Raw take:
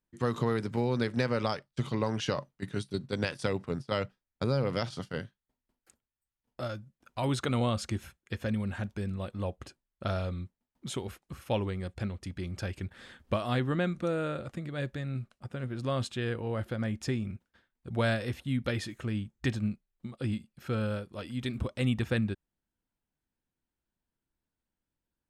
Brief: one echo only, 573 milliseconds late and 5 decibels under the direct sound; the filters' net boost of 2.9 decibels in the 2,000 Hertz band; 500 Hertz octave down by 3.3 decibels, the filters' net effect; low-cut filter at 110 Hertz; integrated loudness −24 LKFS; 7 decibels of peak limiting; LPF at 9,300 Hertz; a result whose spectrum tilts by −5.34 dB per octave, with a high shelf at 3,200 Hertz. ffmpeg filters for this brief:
ffmpeg -i in.wav -af "highpass=110,lowpass=9300,equalizer=frequency=500:width_type=o:gain=-4,equalizer=frequency=2000:width_type=o:gain=5.5,highshelf=frequency=3200:gain=-5,alimiter=limit=-20.5dB:level=0:latency=1,aecho=1:1:573:0.562,volume=11dB" out.wav

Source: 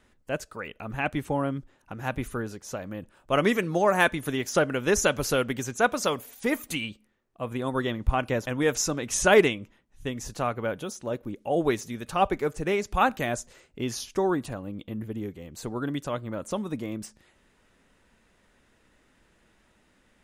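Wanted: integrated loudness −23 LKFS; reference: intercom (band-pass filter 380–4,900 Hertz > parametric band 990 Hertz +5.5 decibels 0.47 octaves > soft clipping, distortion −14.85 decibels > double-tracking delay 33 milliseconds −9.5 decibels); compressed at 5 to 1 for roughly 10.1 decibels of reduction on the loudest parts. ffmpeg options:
ffmpeg -i in.wav -filter_complex "[0:a]acompressor=threshold=-25dB:ratio=5,highpass=380,lowpass=4900,equalizer=frequency=990:width_type=o:width=0.47:gain=5.5,asoftclip=threshold=-22dB,asplit=2[link_01][link_02];[link_02]adelay=33,volume=-9.5dB[link_03];[link_01][link_03]amix=inputs=2:normalize=0,volume=12dB" out.wav

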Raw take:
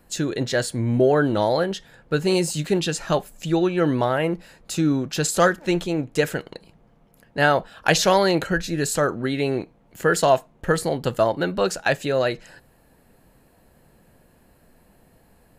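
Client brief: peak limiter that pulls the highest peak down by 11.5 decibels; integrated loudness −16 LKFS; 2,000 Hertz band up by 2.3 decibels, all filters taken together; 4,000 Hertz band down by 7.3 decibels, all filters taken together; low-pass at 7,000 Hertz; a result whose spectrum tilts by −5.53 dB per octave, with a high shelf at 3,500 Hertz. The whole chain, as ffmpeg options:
ffmpeg -i in.wav -af "lowpass=7000,equalizer=frequency=2000:width_type=o:gain=6.5,highshelf=frequency=3500:gain=-9,equalizer=frequency=4000:width_type=o:gain=-5.5,volume=9.5dB,alimiter=limit=-4dB:level=0:latency=1" out.wav

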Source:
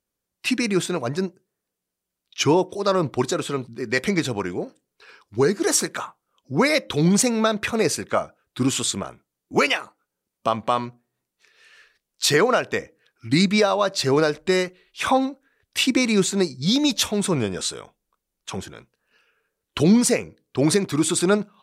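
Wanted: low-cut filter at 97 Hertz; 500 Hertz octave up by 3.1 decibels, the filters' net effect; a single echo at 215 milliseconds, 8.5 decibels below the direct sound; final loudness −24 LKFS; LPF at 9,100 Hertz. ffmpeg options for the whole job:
ffmpeg -i in.wav -af "highpass=97,lowpass=9100,equalizer=frequency=500:width_type=o:gain=4,aecho=1:1:215:0.376,volume=-4dB" out.wav

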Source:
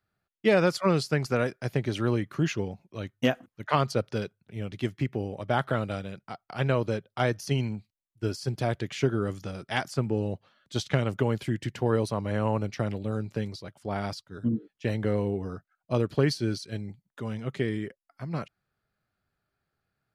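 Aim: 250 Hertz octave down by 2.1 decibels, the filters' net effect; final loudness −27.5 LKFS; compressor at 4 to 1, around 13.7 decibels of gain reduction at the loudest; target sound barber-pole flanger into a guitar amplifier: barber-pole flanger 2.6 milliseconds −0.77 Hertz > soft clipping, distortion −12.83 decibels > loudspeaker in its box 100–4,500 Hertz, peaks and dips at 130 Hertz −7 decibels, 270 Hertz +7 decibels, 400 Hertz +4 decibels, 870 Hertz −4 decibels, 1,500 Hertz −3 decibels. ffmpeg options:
ffmpeg -i in.wav -filter_complex "[0:a]equalizer=frequency=250:width_type=o:gain=-6.5,acompressor=threshold=-37dB:ratio=4,asplit=2[link_01][link_02];[link_02]adelay=2.6,afreqshift=-0.77[link_03];[link_01][link_03]amix=inputs=2:normalize=1,asoftclip=threshold=-38dB,highpass=100,equalizer=frequency=130:width_type=q:width=4:gain=-7,equalizer=frequency=270:width_type=q:width=4:gain=7,equalizer=frequency=400:width_type=q:width=4:gain=4,equalizer=frequency=870:width_type=q:width=4:gain=-4,equalizer=frequency=1500:width_type=q:width=4:gain=-3,lowpass=frequency=4500:width=0.5412,lowpass=frequency=4500:width=1.3066,volume=20dB" out.wav

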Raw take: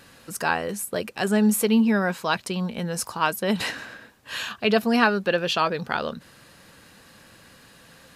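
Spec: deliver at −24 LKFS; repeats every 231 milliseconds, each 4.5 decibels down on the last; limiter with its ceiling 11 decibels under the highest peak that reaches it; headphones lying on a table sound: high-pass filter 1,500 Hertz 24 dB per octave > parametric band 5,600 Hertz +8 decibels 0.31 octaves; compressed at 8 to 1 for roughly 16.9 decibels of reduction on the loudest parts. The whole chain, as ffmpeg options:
ffmpeg -i in.wav -af "acompressor=threshold=-33dB:ratio=8,alimiter=level_in=5dB:limit=-24dB:level=0:latency=1,volume=-5dB,highpass=frequency=1500:width=0.5412,highpass=frequency=1500:width=1.3066,equalizer=frequency=5600:width_type=o:width=0.31:gain=8,aecho=1:1:231|462|693|924|1155|1386|1617|1848|2079:0.596|0.357|0.214|0.129|0.0772|0.0463|0.0278|0.0167|0.01,volume=17.5dB" out.wav

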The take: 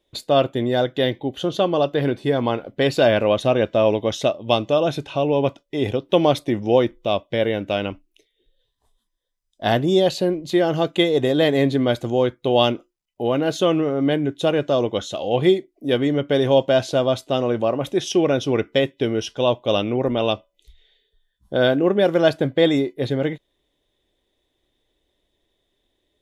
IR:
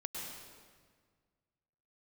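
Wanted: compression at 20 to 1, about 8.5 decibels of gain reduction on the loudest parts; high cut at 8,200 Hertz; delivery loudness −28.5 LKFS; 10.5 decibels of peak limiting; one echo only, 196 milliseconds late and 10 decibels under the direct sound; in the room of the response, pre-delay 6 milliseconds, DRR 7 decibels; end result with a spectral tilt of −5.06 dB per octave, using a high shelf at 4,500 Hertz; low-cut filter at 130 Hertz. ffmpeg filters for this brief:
-filter_complex "[0:a]highpass=130,lowpass=8200,highshelf=frequency=4500:gain=-4.5,acompressor=threshold=-19dB:ratio=20,alimiter=limit=-17.5dB:level=0:latency=1,aecho=1:1:196:0.316,asplit=2[link_01][link_02];[1:a]atrim=start_sample=2205,adelay=6[link_03];[link_02][link_03]afir=irnorm=-1:irlink=0,volume=-7dB[link_04];[link_01][link_04]amix=inputs=2:normalize=0,volume=-1dB"

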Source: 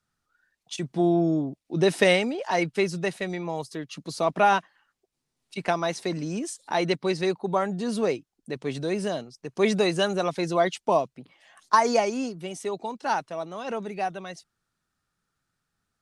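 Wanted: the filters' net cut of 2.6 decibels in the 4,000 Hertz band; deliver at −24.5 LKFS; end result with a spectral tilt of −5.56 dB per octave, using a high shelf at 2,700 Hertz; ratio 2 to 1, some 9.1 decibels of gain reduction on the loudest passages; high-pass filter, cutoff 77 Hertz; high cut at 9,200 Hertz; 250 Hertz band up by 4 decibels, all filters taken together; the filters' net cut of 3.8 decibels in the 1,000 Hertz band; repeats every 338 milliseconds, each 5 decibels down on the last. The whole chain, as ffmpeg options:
ffmpeg -i in.wav -af "highpass=77,lowpass=9200,equalizer=frequency=250:width_type=o:gain=6.5,equalizer=frequency=1000:width_type=o:gain=-6,highshelf=frequency=2700:gain=5,equalizer=frequency=4000:width_type=o:gain=-7,acompressor=threshold=-31dB:ratio=2,aecho=1:1:338|676|1014|1352|1690|2028|2366:0.562|0.315|0.176|0.0988|0.0553|0.031|0.0173,volume=6dB" out.wav

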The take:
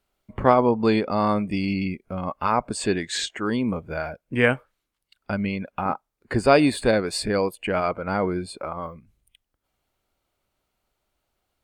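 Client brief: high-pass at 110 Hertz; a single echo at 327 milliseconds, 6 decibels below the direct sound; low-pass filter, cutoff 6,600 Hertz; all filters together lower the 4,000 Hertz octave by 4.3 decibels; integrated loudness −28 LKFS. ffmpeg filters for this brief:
ffmpeg -i in.wav -af "highpass=110,lowpass=6600,equalizer=frequency=4000:width_type=o:gain=-4.5,aecho=1:1:327:0.501,volume=-4.5dB" out.wav

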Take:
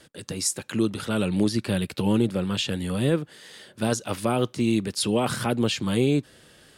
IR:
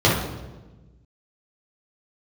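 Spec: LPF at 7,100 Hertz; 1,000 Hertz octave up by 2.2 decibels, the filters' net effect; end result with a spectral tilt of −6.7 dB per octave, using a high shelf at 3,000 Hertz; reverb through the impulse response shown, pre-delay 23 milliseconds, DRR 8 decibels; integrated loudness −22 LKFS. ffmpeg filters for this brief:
-filter_complex "[0:a]lowpass=7100,equalizer=frequency=1000:width_type=o:gain=3.5,highshelf=frequency=3000:gain=-3.5,asplit=2[link_01][link_02];[1:a]atrim=start_sample=2205,adelay=23[link_03];[link_02][link_03]afir=irnorm=-1:irlink=0,volume=-29dB[link_04];[link_01][link_04]amix=inputs=2:normalize=0,volume=0.5dB"

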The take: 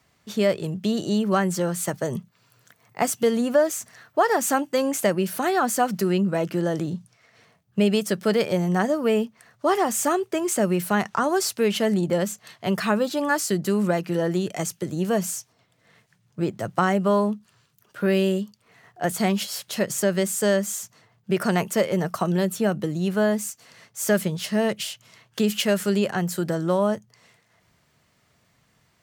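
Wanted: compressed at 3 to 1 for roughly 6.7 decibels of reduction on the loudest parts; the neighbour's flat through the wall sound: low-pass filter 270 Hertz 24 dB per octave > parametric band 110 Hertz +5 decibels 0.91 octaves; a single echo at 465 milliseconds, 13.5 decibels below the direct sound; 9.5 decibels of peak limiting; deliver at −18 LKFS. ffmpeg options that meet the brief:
ffmpeg -i in.wav -af "acompressor=threshold=-24dB:ratio=3,alimiter=limit=-19dB:level=0:latency=1,lowpass=frequency=270:width=0.5412,lowpass=frequency=270:width=1.3066,equalizer=frequency=110:width_type=o:width=0.91:gain=5,aecho=1:1:465:0.211,volume=15dB" out.wav

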